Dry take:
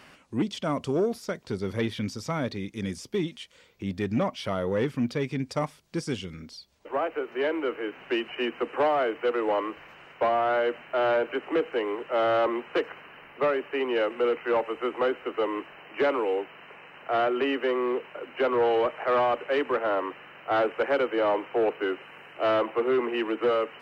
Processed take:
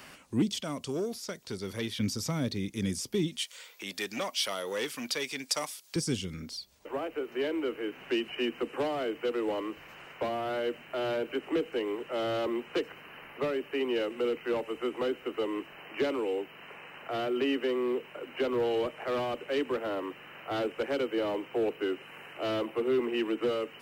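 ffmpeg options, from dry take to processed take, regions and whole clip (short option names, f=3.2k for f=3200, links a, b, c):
-filter_complex "[0:a]asettb=1/sr,asplit=3[a][b][c];[a]atrim=end=0.604[d];[b]atrim=start=0.6:end=2,asetpts=PTS-STARTPTS,afade=t=in:d=0.004:c=qsin,afade=t=out:st=1.396:d=0.004:c=qsin,lowshelf=f=420:g=-9.5,acrossover=split=7000[e][f];[f]acompressor=threshold=-58dB:ratio=4:attack=1:release=60[g];[e][g]amix=inputs=2:normalize=0[h];[c]atrim=start=1.996[i];[d][h]acrossfade=d=0.004:c1=hsin:c2=qsin[j];[j][i]acrossfade=d=0.004:c1=qsin:c2=hsin,asettb=1/sr,asplit=3[k][l][m];[k]atrim=end=3.384[n];[l]atrim=start=3.38:end=5.96,asetpts=PTS-STARTPTS,afade=t=in:d=0.004:c=qsin,afade=t=out:st=2.576:d=0.004:c=qsin,highpass=790,acontrast=89[o];[m]atrim=start=5.956[p];[n][o]acrossfade=d=0.004:c1=hsin:c2=qsin[q];[q][p]acrossfade=d=0.004:c1=qsin:c2=hsin,highshelf=f=7k:g=12,acrossover=split=390|3000[r][s][t];[s]acompressor=threshold=-48dB:ratio=2[u];[r][u][t]amix=inputs=3:normalize=0,volume=1dB"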